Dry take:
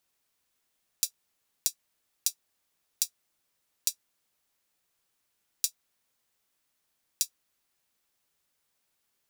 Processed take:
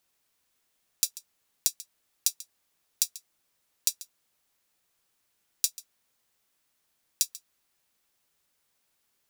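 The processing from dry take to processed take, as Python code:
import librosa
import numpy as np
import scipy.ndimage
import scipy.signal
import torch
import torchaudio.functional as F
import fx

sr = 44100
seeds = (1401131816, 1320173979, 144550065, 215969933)

y = x + 10.0 ** (-18.0 / 20.0) * np.pad(x, (int(139 * sr / 1000.0), 0))[:len(x)]
y = F.gain(torch.from_numpy(y), 2.5).numpy()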